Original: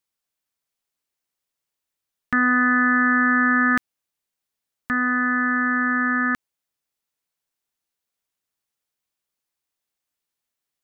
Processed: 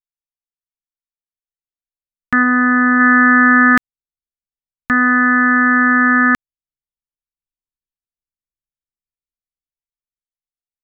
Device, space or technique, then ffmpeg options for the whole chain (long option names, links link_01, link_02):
voice memo with heavy noise removal: -filter_complex "[0:a]asplit=3[link_01][link_02][link_03];[link_01]afade=type=out:start_time=2.42:duration=0.02[link_04];[link_02]highshelf=frequency=2000:gain=-9,afade=type=in:start_time=2.42:duration=0.02,afade=type=out:start_time=2.99:duration=0.02[link_05];[link_03]afade=type=in:start_time=2.99:duration=0.02[link_06];[link_04][link_05][link_06]amix=inputs=3:normalize=0,anlmdn=0.158,dynaudnorm=framelen=600:gausssize=7:maxgain=11.5dB"